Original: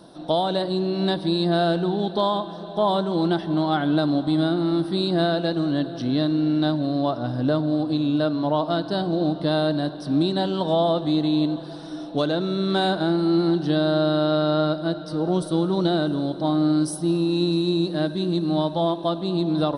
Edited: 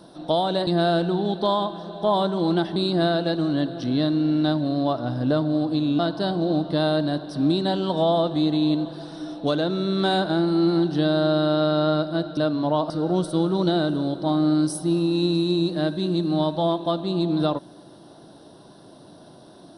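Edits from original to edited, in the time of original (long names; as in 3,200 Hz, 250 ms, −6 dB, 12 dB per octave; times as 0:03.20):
0:00.67–0:01.41: remove
0:03.50–0:04.94: remove
0:08.17–0:08.70: move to 0:15.08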